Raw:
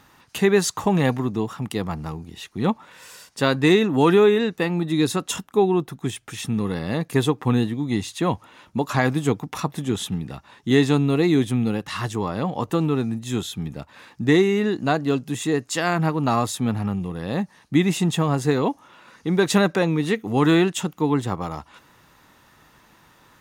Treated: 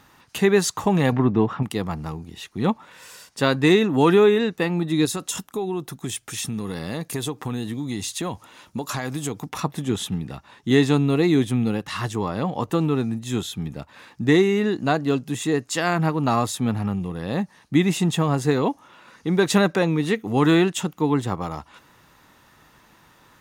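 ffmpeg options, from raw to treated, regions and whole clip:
ffmpeg -i in.wav -filter_complex "[0:a]asettb=1/sr,asplit=3[link_01][link_02][link_03];[link_01]atrim=end=1.124[link_04];[link_02]atrim=start=1.12:end=1.63,asetpts=PTS-STARTPTS,afade=type=in:duration=0.004:curve=qsin,afade=type=out:start_time=0.506:duration=0.004:curve=qsin,lowpass=2400,acontrast=45[link_05];[link_03]atrim=start=1.626[link_06];[link_04][link_05]acrossfade=duration=0.004:curve1=hsin:curve2=qsin[link_07];[link_07][link_06]acrossfade=duration=0.004:curve1=qsin:curve2=hsin,asettb=1/sr,asplit=3[link_08][link_09][link_10];[link_08]atrim=end=5.054[link_11];[link_09]atrim=start=5.05:end=9.49,asetpts=PTS-STARTPTS,afade=type=in:duration=0.004:curve=qsin,afade=type=out:start_time=4.436:duration=0.004:curve=qsin,bass=frequency=250:gain=-1,treble=frequency=4000:gain=8,acompressor=threshold=-24dB:ratio=4:attack=3.2:release=140:knee=1:detection=peak[link_12];[link_10]atrim=start=9.486[link_13];[link_11][link_12]acrossfade=duration=0.004:curve1=hsin:curve2=qsin[link_14];[link_14][link_13]acrossfade=duration=0.004:curve1=qsin:curve2=hsin" out.wav

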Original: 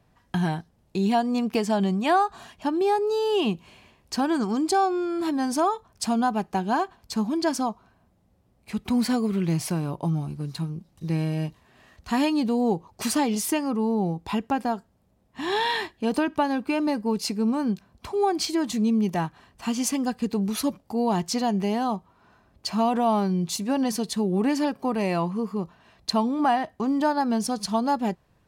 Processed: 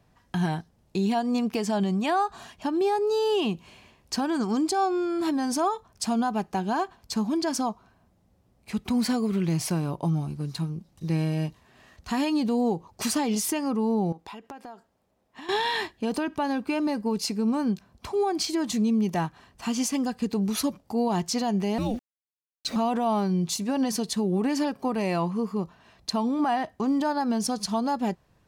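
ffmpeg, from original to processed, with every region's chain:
ffmpeg -i in.wav -filter_complex "[0:a]asettb=1/sr,asplit=3[link_01][link_02][link_03];[link_01]atrim=end=14.124[link_04];[link_02]atrim=start=14.12:end=15.49,asetpts=PTS-STARTPTS,afade=type=in:duration=0.004:curve=qsin,afade=type=out:start_time=1.366:duration=0.004:curve=qsin,bass=frequency=250:gain=-12,treble=frequency=4000:gain=-4,acompressor=threshold=-38dB:ratio=8:attack=3.2:release=140:knee=1:detection=peak[link_05];[link_03]atrim=start=15.486[link_06];[link_04][link_05]acrossfade=duration=0.004:curve1=hsin:curve2=qsin[link_07];[link_07][link_06]acrossfade=duration=0.004:curve1=qsin:curve2=hsin,asettb=1/sr,asplit=3[link_08][link_09][link_10];[link_08]atrim=end=21.784[link_11];[link_09]atrim=start=21.78:end=22.76,asetpts=PTS-STARTPTS,afade=type=in:duration=0.004:curve=qsin,afade=type=out:start_time=0.976:duration=0.004:curve=qsin,bandreject=frequency=790:width=18,afreqshift=-430,aeval=exprs='val(0)*gte(abs(val(0)),0.00596)':channel_layout=same[link_12];[link_10]atrim=start=22.756[link_13];[link_11][link_12]acrossfade=duration=0.004:curve1=hsin:curve2=qsin[link_14];[link_14][link_13]acrossfade=duration=0.004:curve1=qsin:curve2=hsin,equalizer=frequency=5900:width=1.5:gain=2.5,alimiter=limit=-17.5dB:level=0:latency=1:release=82" out.wav

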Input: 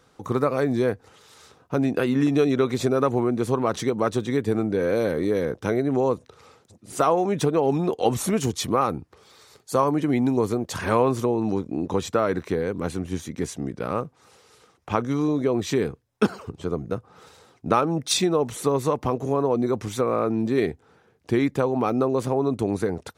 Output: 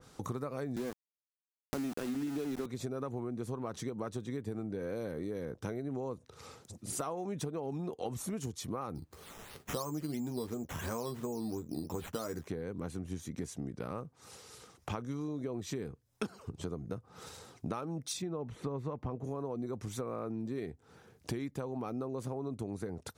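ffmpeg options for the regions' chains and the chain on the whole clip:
ffmpeg -i in.wav -filter_complex "[0:a]asettb=1/sr,asplit=3[link_01][link_02][link_03];[link_01]atrim=end=0.764[link_04];[link_02]atrim=start=0.76:end=2.66,asetpts=PTS-STARTPTS,afade=type=in:duration=0.004:curve=qsin,afade=type=out:start_time=1.896:duration=0.004:curve=qsin,highpass=frequency=160:width=0.5412,highpass=frequency=160:width=1.3066,equalizer=frequency=250:width_type=o:width=0.93:gain=4.5,aeval=exprs='val(0)*gte(abs(val(0)),0.0668)':channel_layout=same[link_05];[link_03]atrim=start=2.656[link_06];[link_04][link_05]acrossfade=duration=0.004:curve1=hsin:curve2=qsin[link_07];[link_07][link_06]acrossfade=duration=0.004:curve1=qsin:curve2=hsin,asettb=1/sr,asplit=3[link_08][link_09][link_10];[link_08]atrim=end=8.954[link_11];[link_09]atrim=start=8.95:end=12.47,asetpts=PTS-STARTPTS,afade=type=in:duration=0.004:curve=qsin,afade=type=out:start_time=3.516:duration=0.004:curve=qsin,asplit=2[link_12][link_13];[link_13]adelay=13,volume=-6.5dB[link_14];[link_12][link_14]amix=inputs=2:normalize=0,atrim=end_sample=155232,acrusher=samples=8:mix=1:aa=0.000001:lfo=1:lforange=4.8:lforate=2.9[link_15];[link_10]atrim=start=12.466[link_16];[link_11][link_15]acrossfade=duration=0.004:curve1=hsin:curve2=qsin[link_17];[link_17][link_16]acrossfade=duration=0.004:curve1=qsin:curve2=hsin,asettb=1/sr,asplit=3[link_18][link_19][link_20];[link_18]atrim=end=18.224[link_21];[link_19]atrim=start=18.22:end=19.24,asetpts=PTS-STARTPTS,afade=type=in:duration=0.004:curve=qsin,afade=type=out:start_time=1.016:duration=0.004:curve=qsin,acrossover=split=5400[link_22][link_23];[link_23]acompressor=threshold=-47dB:ratio=4:attack=1:release=60[link_24];[link_22][link_24]amix=inputs=2:normalize=0,bass=frequency=250:gain=3,treble=frequency=4000:gain=-14[link_25];[link_20]atrim=start=19.236[link_26];[link_21][link_25]acrossfade=duration=0.004:curve1=hsin:curve2=qsin[link_27];[link_27][link_26]acrossfade=duration=0.004:curve1=qsin:curve2=hsin,bass=frequency=250:gain=5,treble=frequency=4000:gain=8,acompressor=threshold=-36dB:ratio=5,adynamicequalizer=threshold=0.00141:dfrequency=2300:dqfactor=0.7:tfrequency=2300:tqfactor=0.7:attack=5:release=100:ratio=0.375:range=2.5:mode=cutabove:tftype=highshelf,volume=-1dB" out.wav

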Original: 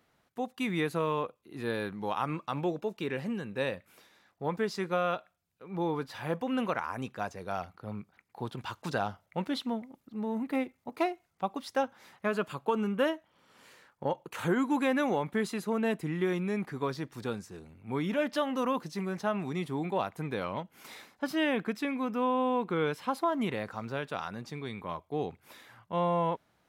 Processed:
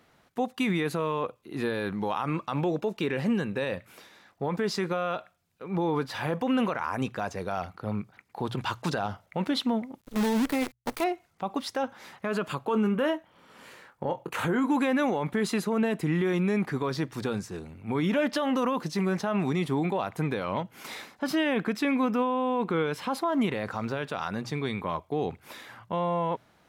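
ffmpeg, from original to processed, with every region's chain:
ffmpeg -i in.wav -filter_complex "[0:a]asettb=1/sr,asplit=3[link_01][link_02][link_03];[link_01]atrim=end=10.014[link_04];[link_02]atrim=start=10.01:end=11.04,asetpts=PTS-STARTPTS,afade=type=in:duration=0.004:curve=qsin,afade=type=out:start_time=1.026:duration=0.004:curve=qsin,highpass=frequency=47:poles=1,aemphasis=mode=production:type=50kf,acrusher=bits=7:dc=4:mix=0:aa=0.000001[link_05];[link_03]atrim=start=11.036[link_06];[link_04][link_05]acrossfade=duration=0.004:curve1=hsin:curve2=qsin[link_07];[link_07][link_06]acrossfade=duration=0.004:curve1=qsin:curve2=hsin,asettb=1/sr,asplit=3[link_08][link_09][link_10];[link_08]atrim=end=12.724[link_11];[link_09]atrim=start=12.72:end=14.72,asetpts=PTS-STARTPTS,afade=type=in:duration=0.004:curve=qsin,afade=type=out:start_time=1.996:duration=0.004:curve=qsin,equalizer=frequency=5300:width_type=o:width=1.6:gain=-4,asplit=2[link_12][link_13];[link_13]adelay=23,volume=-11.5dB[link_14];[link_12][link_14]amix=inputs=2:normalize=0,atrim=end_sample=88200[link_15];[link_10]atrim=start=14.716[link_16];[link_11][link_15]acrossfade=duration=0.004:curve1=hsin:curve2=qsin[link_17];[link_17][link_16]acrossfade=duration=0.004:curve1=qsin:curve2=hsin,highshelf=frequency=10000:gain=-4.5,bandreject=frequency=60:width_type=h:width=6,bandreject=frequency=120:width_type=h:width=6,alimiter=level_in=3dB:limit=-24dB:level=0:latency=1:release=48,volume=-3dB,volume=8.5dB" out.wav

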